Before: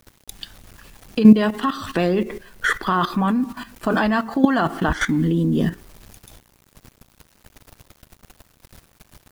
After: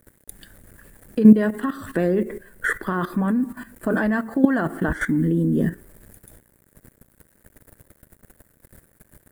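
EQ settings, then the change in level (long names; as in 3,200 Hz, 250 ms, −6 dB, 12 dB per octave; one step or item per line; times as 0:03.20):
low-shelf EQ 110 Hz −4.5 dB
flat-topped bell 970 Hz −8.5 dB 1.1 octaves
flat-topped bell 3,900 Hz −15 dB
0.0 dB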